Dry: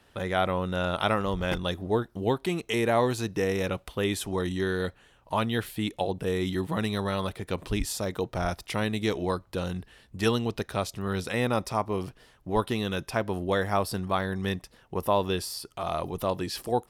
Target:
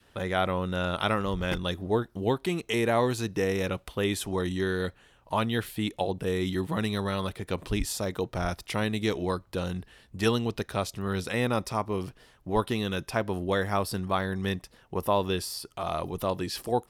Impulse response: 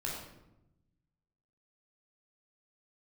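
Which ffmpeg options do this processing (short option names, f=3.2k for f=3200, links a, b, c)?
-af "adynamicequalizer=threshold=0.01:dfrequency=720:dqfactor=1.6:tfrequency=720:tqfactor=1.6:attack=5:release=100:ratio=0.375:range=2:mode=cutabove:tftype=bell"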